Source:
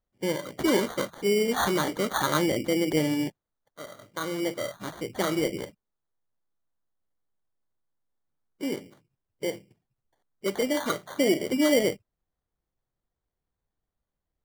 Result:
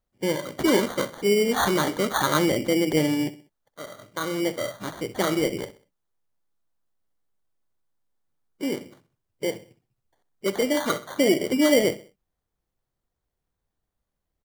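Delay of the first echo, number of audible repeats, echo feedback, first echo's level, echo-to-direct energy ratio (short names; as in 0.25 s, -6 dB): 64 ms, 3, 39%, -16.0 dB, -15.5 dB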